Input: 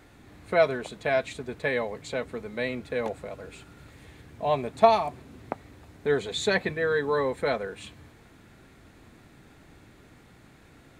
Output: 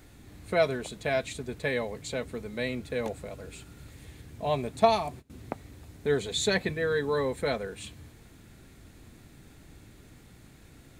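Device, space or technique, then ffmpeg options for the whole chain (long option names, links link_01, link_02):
smiley-face EQ: -filter_complex "[0:a]asettb=1/sr,asplit=3[link_01][link_02][link_03];[link_01]atrim=end=4.464[link_04];[link_02]atrim=start=4.46:end=5.3,asetpts=PTS-STARTPTS,afade=type=in:duration=0.004:curve=qsin,afade=type=out:start_time=0.836:duration=0.004:curve=qsin,agate=range=-21dB:threshold=-41dB:ratio=16:detection=peak[link_05];[link_03]atrim=start=5.296[link_06];[link_04][link_05]acrossfade=duration=0.004:curve1=hsin:curve2=qsin[link_07];[link_07][link_06]acrossfade=duration=0.004:curve1=qsin:curve2=hsin,lowshelf=frequency=94:gain=6.5,equalizer=frequency=1100:width_type=o:width=2.4:gain=-5,highshelf=frequency=5600:gain=7.5"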